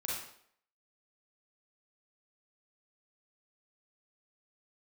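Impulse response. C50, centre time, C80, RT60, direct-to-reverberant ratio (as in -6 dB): -0.5 dB, 63 ms, 4.5 dB, 0.65 s, -5.5 dB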